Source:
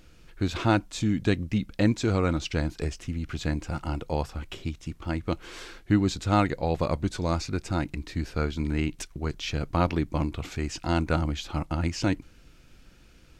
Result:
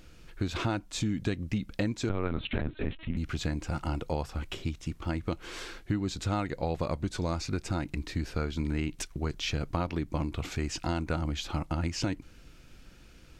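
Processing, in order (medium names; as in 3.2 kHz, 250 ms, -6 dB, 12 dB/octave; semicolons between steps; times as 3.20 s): compression 5:1, threshold -28 dBFS, peak gain reduction 11 dB; 2.09–3.17 s: LPC vocoder at 8 kHz pitch kept; trim +1 dB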